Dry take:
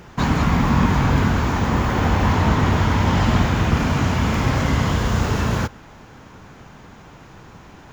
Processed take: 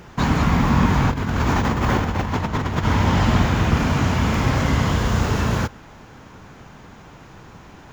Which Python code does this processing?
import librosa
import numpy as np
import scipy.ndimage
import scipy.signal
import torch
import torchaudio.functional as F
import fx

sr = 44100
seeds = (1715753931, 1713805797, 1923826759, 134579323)

y = fx.over_compress(x, sr, threshold_db=-20.0, ratio=-0.5, at=(1.1, 2.84), fade=0.02)